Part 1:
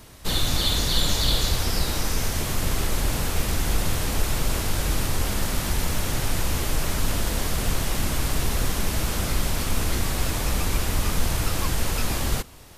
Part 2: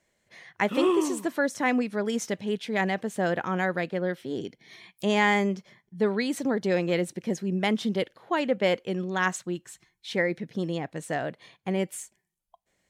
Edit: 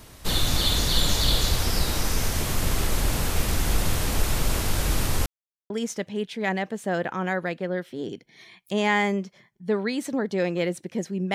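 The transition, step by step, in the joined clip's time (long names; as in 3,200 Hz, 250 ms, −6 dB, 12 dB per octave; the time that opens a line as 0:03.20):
part 1
0:05.26–0:05.70: silence
0:05.70: continue with part 2 from 0:02.02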